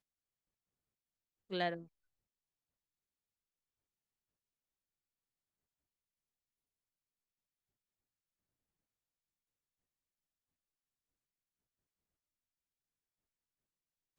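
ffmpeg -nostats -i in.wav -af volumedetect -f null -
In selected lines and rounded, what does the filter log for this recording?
mean_volume: -53.5 dB
max_volume: -21.2 dB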